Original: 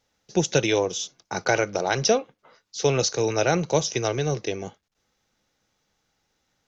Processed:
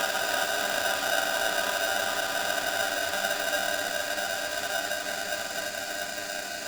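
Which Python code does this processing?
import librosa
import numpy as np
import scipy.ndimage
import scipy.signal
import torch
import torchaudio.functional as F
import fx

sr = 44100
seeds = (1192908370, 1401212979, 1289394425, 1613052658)

y = fx.paulstretch(x, sr, seeds[0], factor=16.0, window_s=1.0, from_s=0.64)
y = y + 0.52 * np.pad(y, (int(2.5 * sr / 1000.0), 0))[:len(y)]
y = y * np.sign(np.sin(2.0 * np.pi * 1100.0 * np.arange(len(y)) / sr))
y = y * 10.0 ** (-7.0 / 20.0)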